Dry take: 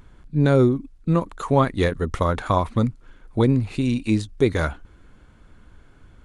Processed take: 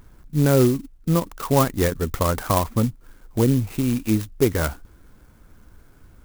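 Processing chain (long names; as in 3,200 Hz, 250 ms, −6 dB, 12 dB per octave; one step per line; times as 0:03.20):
0:02.80–0:03.60: dynamic equaliser 1,400 Hz, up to −6 dB, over −43 dBFS, Q 1.2
converter with an unsteady clock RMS 0.069 ms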